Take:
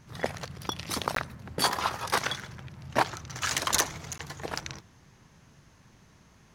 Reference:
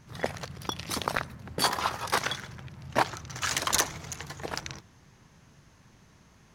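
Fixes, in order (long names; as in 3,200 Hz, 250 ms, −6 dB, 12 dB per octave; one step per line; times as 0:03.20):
clipped peaks rebuilt −10.5 dBFS
repair the gap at 0:01.15/0:04.18, 13 ms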